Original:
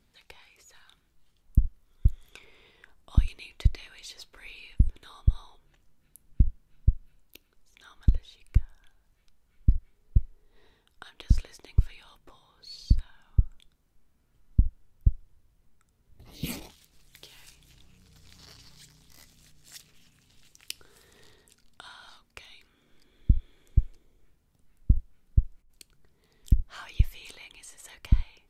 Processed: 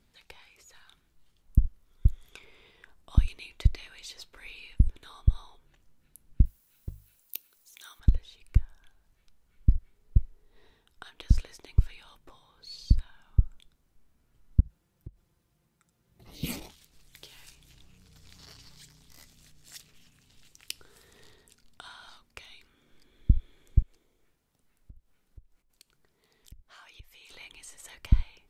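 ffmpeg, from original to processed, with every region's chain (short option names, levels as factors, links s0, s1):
-filter_complex "[0:a]asettb=1/sr,asplit=3[s0][s1][s2];[s0]atrim=end=6.454[s3];[s1]atrim=start=6.45:end=8,asetpts=PTS-STARTPTS,afade=t=in:d=0.004:c=qsin,afade=t=out:st=1.546:d=0.004:c=qsin,aemphasis=mode=production:type=riaa,bandreject=f=50:t=h:w=6,bandreject=f=100:t=h:w=6,bandreject=f=150:t=h:w=6[s4];[s2]atrim=start=7.996[s5];[s3][s4]acrossfade=d=0.004:c1=hsin:c2=qsin[s6];[s6][s5]acrossfade=d=0.004:c1=qsin:c2=hsin,asettb=1/sr,asplit=3[s7][s8][s9];[s7]atrim=end=14.604[s10];[s8]atrim=start=14.6:end=16.27,asetpts=PTS-STARTPTS,afade=t=in:d=0.004:c=qsin,afade=t=out:st=1.666:d=0.004:c=qsin,highpass=82,aecho=1:1:5.8:0.55,atrim=end_sample=73647,acompressor=threshold=0.01:ratio=4:attack=3.2:release=140:knee=1:detection=peak[s11];[s9]atrim=start=16.266[s12];[s10][s11]acrossfade=d=0.004:c1=hsin:c2=qsin[s13];[s13][s12]acrossfade=d=0.004:c1=qsin:c2=hsin,asettb=1/sr,asplit=3[s14][s15][s16];[s14]atrim=end=23.824[s17];[s15]atrim=start=23.82:end=27.31,asetpts=PTS-STARTPTS,afade=t=in:d=0.004:c=qsin,afade=t=out:st=3.486:d=0.004:c=qsin,lowshelf=f=190:g=-11.5,acompressor=threshold=0.002:ratio=2.5:attack=3.2:release=140:knee=1:detection=peak[s18];[s16]atrim=start=27.306[s19];[s17][s18]acrossfade=d=0.004:c1=hsin:c2=qsin[s20];[s20][s19]acrossfade=d=0.004:c1=qsin:c2=hsin"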